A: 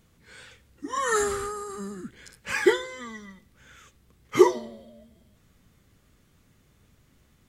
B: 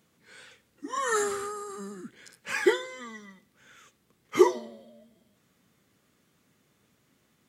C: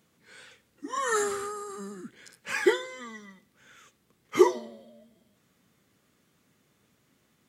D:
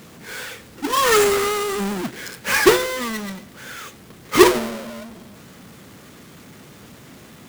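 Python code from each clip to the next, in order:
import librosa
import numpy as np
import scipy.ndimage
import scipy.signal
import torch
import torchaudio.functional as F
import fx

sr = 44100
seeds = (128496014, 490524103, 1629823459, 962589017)

y1 = scipy.signal.sosfilt(scipy.signal.butter(2, 180.0, 'highpass', fs=sr, output='sos'), x)
y1 = F.gain(torch.from_numpy(y1), -2.5).numpy()
y2 = y1
y3 = fx.halfwave_hold(y2, sr)
y3 = fx.power_curve(y3, sr, exponent=0.7)
y3 = F.gain(torch.from_numpy(y3), 3.0).numpy()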